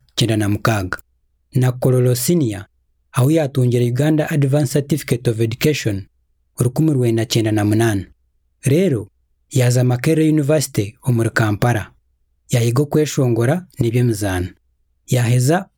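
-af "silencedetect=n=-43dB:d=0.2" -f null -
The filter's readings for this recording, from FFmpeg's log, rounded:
silence_start: 1.00
silence_end: 1.53 | silence_duration: 0.52
silence_start: 2.65
silence_end: 3.13 | silence_duration: 0.48
silence_start: 6.07
silence_end: 6.57 | silence_duration: 0.51
silence_start: 8.12
silence_end: 8.63 | silence_duration: 0.51
silence_start: 9.08
silence_end: 9.51 | silence_duration: 0.43
silence_start: 11.90
silence_end: 12.49 | silence_duration: 0.59
silence_start: 14.52
silence_end: 15.08 | silence_duration: 0.56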